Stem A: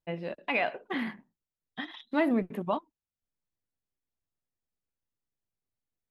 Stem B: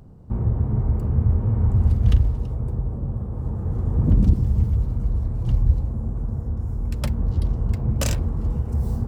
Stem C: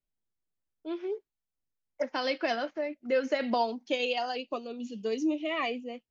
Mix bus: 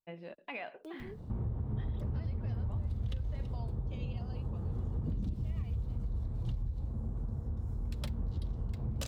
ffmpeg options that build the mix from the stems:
-filter_complex "[0:a]volume=-9.5dB[a];[1:a]equalizer=f=3.7k:w=2.2:g=9,adelay=1000,volume=-1.5dB[b];[2:a]acrusher=bits=10:mix=0:aa=0.000001,volume=-15dB,asplit=2[c][d];[d]apad=whole_len=269224[e];[a][e]sidechaincompress=threshold=-51dB:ratio=8:attack=16:release=400[f];[b][c]amix=inputs=2:normalize=0,acompressor=mode=upward:threshold=-39dB:ratio=2.5,alimiter=limit=-16.5dB:level=0:latency=1:release=169,volume=0dB[g];[f][g]amix=inputs=2:normalize=0,acompressor=threshold=-41dB:ratio=2"

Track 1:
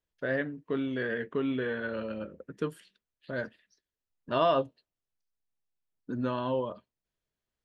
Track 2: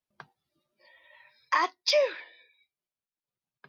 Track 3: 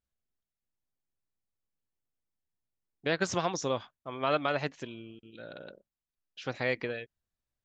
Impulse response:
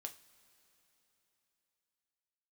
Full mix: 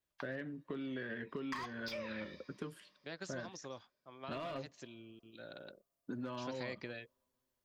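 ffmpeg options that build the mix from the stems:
-filter_complex "[0:a]asoftclip=type=tanh:threshold=-19dB,highpass=57,acrossover=split=3200[a][b];[b]acompressor=threshold=-57dB:ratio=4:attack=1:release=60[c];[a][c]amix=inputs=2:normalize=0,volume=-1.5dB,asplit=2[d][e];[e]volume=-22dB[f];[1:a]agate=range=-9dB:threshold=-53dB:ratio=16:detection=peak,highpass=f=730:w=0.5412,highpass=f=730:w=1.3066,volume=0dB,asplit=2[g][h];[h]volume=-11dB[i];[2:a]bass=f=250:g=-2,treble=f=4k:g=-3,aexciter=amount=2.4:drive=7.5:freq=4.2k,volume=-5dB,afade=t=in:st=4.63:d=0.59:silence=0.316228[j];[d][g]amix=inputs=2:normalize=0,asoftclip=type=hard:threshold=-23.5dB,acompressor=threshold=-33dB:ratio=6,volume=0dB[k];[3:a]atrim=start_sample=2205[l];[f][i]amix=inputs=2:normalize=0[m];[m][l]afir=irnorm=-1:irlink=0[n];[j][k][n]amix=inputs=3:normalize=0,bandreject=f=470:w=12,acrossover=split=310|2400[o][p][q];[o]acompressor=threshold=-45dB:ratio=4[r];[p]acompressor=threshold=-44dB:ratio=4[s];[q]acompressor=threshold=-51dB:ratio=4[t];[r][s][t]amix=inputs=3:normalize=0"

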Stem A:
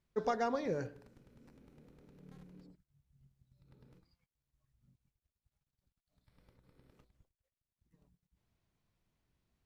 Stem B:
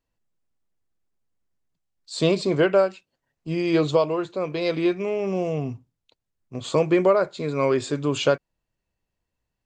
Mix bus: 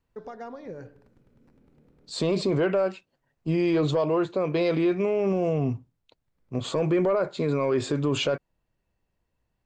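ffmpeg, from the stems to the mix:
-filter_complex "[0:a]alimiter=level_in=6dB:limit=-24dB:level=0:latency=1:release=288,volume=-6dB,volume=1dB[a];[1:a]acontrast=83,volume=-2.5dB,asplit=2[b][c];[c]apad=whole_len=425888[d];[a][d]sidechaincompress=threshold=-36dB:ratio=8:attack=16:release=1220[e];[e][b]amix=inputs=2:normalize=0,highshelf=f=3.1k:g=-9,alimiter=limit=-16.5dB:level=0:latency=1:release=36"

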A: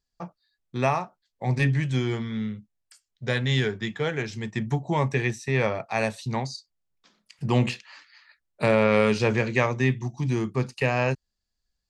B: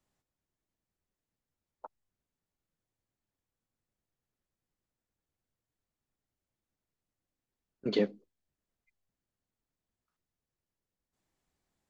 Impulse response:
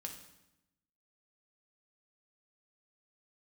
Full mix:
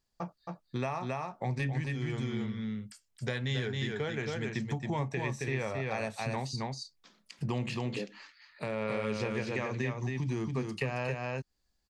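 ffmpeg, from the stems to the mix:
-filter_complex "[0:a]alimiter=limit=-14dB:level=0:latency=1:release=178,volume=0.5dB,asplit=2[a][b];[b]volume=-4.5dB[c];[1:a]volume=-5dB,asplit=2[d][e];[e]apad=whole_len=524407[f];[a][f]sidechaincompress=threshold=-57dB:ratio=10:attack=22:release=466[g];[c]aecho=0:1:271:1[h];[g][d][h]amix=inputs=3:normalize=0,acompressor=threshold=-33dB:ratio=3"

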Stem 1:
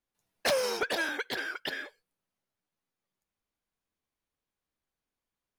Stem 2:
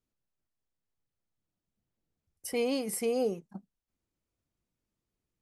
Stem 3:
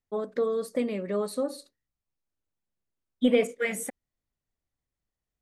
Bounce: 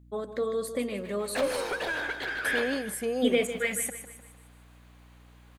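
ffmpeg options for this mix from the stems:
-filter_complex "[0:a]acompressor=mode=upward:threshold=-42dB:ratio=2.5,asplit=2[a][b];[b]highpass=f=720:p=1,volume=17dB,asoftclip=type=tanh:threshold=-19dB[c];[a][c]amix=inputs=2:normalize=0,lowpass=f=2.2k:p=1,volume=-6dB,adelay=750,volume=2.5dB,asplit=2[d][e];[e]volume=-7dB[f];[1:a]volume=-0.5dB,asplit=2[g][h];[2:a]highshelf=f=2.1k:g=9.5,volume=-3.5dB,asplit=2[i][j];[j]volume=-11.5dB[k];[h]apad=whole_len=279278[l];[d][l]sidechaingate=range=-33dB:threshold=-59dB:ratio=16:detection=peak[m];[f][k]amix=inputs=2:normalize=0,aecho=0:1:152|304|456|608|760|912:1|0.44|0.194|0.0852|0.0375|0.0165[n];[m][g][i][n]amix=inputs=4:normalize=0,equalizer=f=5.4k:t=o:w=0.27:g=-8,aeval=exprs='val(0)+0.00224*(sin(2*PI*60*n/s)+sin(2*PI*2*60*n/s)/2+sin(2*PI*3*60*n/s)/3+sin(2*PI*4*60*n/s)/4+sin(2*PI*5*60*n/s)/5)':c=same"

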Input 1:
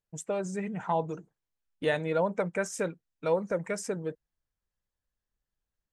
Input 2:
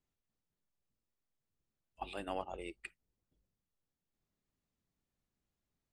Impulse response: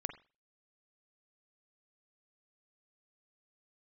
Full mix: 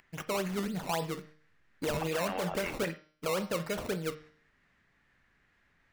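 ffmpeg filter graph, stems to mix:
-filter_complex "[0:a]acrusher=samples=19:mix=1:aa=0.000001:lfo=1:lforange=19:lforate=3.7,bandreject=f=153.4:t=h:w=4,bandreject=f=306.8:t=h:w=4,bandreject=f=460.2:t=h:w=4,bandreject=f=613.6:t=h:w=4,bandreject=f=767:t=h:w=4,bandreject=f=920.4:t=h:w=4,bandreject=f=1.0738k:t=h:w=4,bandreject=f=1.2272k:t=h:w=4,bandreject=f=1.3806k:t=h:w=4,bandreject=f=1.534k:t=h:w=4,bandreject=f=1.6874k:t=h:w=4,bandreject=f=1.8408k:t=h:w=4,bandreject=f=1.9942k:t=h:w=4,bandreject=f=2.1476k:t=h:w=4,bandreject=f=2.301k:t=h:w=4,bandreject=f=2.4544k:t=h:w=4,bandreject=f=2.6078k:t=h:w=4,bandreject=f=2.7612k:t=h:w=4,bandreject=f=2.9146k:t=h:w=4,bandreject=f=3.068k:t=h:w=4,bandreject=f=3.2214k:t=h:w=4,bandreject=f=3.3748k:t=h:w=4,bandreject=f=3.5282k:t=h:w=4,bandreject=f=3.6816k:t=h:w=4,bandreject=f=3.835k:t=h:w=4,bandreject=f=3.9884k:t=h:w=4,bandreject=f=4.1418k:t=h:w=4,bandreject=f=4.2952k:t=h:w=4,bandreject=f=4.4486k:t=h:w=4,bandreject=f=4.602k:t=h:w=4,bandreject=f=4.7554k:t=h:w=4,bandreject=f=4.9088k:t=h:w=4,bandreject=f=5.0622k:t=h:w=4,bandreject=f=5.2156k:t=h:w=4,bandreject=f=5.369k:t=h:w=4,bandreject=f=5.5224k:t=h:w=4,bandreject=f=5.6758k:t=h:w=4,bandreject=f=5.8292k:t=h:w=4,volume=-3dB,asplit=3[a][b][c];[b]volume=-5dB[d];[1:a]lowpass=f=1.8k:t=q:w=3.8,acompressor=mode=upward:threshold=-49dB:ratio=2.5,crystalizer=i=8:c=0,volume=-2.5dB,asplit=2[e][f];[f]volume=-3.5dB[g];[c]apad=whole_len=261081[h];[e][h]sidechaingate=range=-33dB:threshold=-55dB:ratio=16:detection=peak[i];[2:a]atrim=start_sample=2205[j];[d][g]amix=inputs=2:normalize=0[k];[k][j]afir=irnorm=-1:irlink=0[l];[a][i][l]amix=inputs=3:normalize=0,alimiter=limit=-24dB:level=0:latency=1:release=25"

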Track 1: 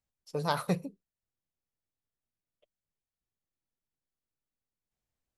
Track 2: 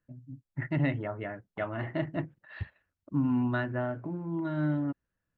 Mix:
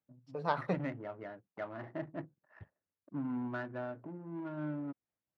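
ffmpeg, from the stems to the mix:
-filter_complex "[0:a]tremolo=f=4.1:d=0.44,volume=-0.5dB[a];[1:a]acontrast=62,volume=15.5dB,asoftclip=hard,volume=-15.5dB,adynamicsmooth=sensitivity=3.5:basefreq=570,volume=-12.5dB[b];[a][b]amix=inputs=2:normalize=0,highpass=100,lowpass=2.2k,lowshelf=f=170:g=-9.5"

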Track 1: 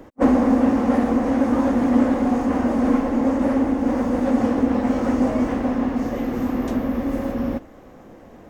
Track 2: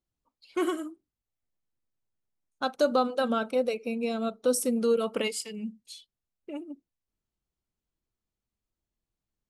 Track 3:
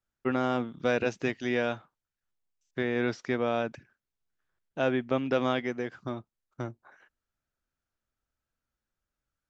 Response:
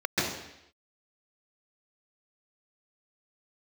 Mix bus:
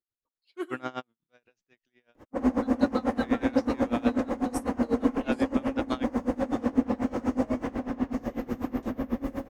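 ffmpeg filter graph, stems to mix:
-filter_complex "[0:a]adelay=2150,volume=-3dB[a];[1:a]equalizer=f=400:t=o:w=0.67:g=8,equalizer=f=1.6k:t=o:w=0.67:g=9,equalizer=f=4k:t=o:w=0.67:g=6,volume=-10dB,asplit=2[b][c];[2:a]tiltshelf=f=780:g=-4,adelay=450,volume=-1.5dB[d];[c]apad=whole_len=438370[e];[d][e]sidechaingate=range=-30dB:threshold=-55dB:ratio=16:detection=peak[f];[a][b][f]amix=inputs=3:normalize=0,aeval=exprs='val(0)*pow(10,-22*(0.5-0.5*cos(2*PI*8.1*n/s))/20)':c=same"

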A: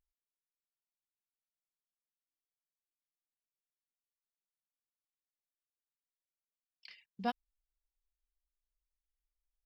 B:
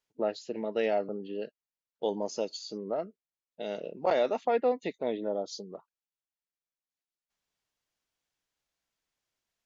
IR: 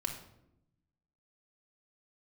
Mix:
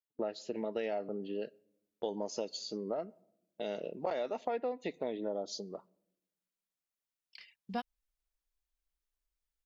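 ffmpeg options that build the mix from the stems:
-filter_complex "[0:a]adelay=500,volume=1dB[a];[1:a]agate=range=-17dB:threshold=-54dB:ratio=16:detection=peak,volume=-1dB,asplit=2[b][c];[c]volume=-22.5dB[d];[2:a]atrim=start_sample=2205[e];[d][e]afir=irnorm=-1:irlink=0[f];[a][b][f]amix=inputs=3:normalize=0,acompressor=threshold=-32dB:ratio=6"

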